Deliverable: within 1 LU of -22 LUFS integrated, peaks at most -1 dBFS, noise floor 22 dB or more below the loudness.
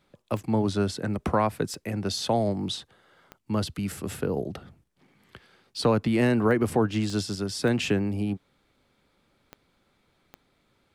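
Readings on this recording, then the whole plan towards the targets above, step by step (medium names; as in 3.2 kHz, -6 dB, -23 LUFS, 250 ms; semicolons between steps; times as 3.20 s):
clicks found 8; loudness -27.0 LUFS; peak level -12.0 dBFS; loudness target -22.0 LUFS
-> de-click; trim +5 dB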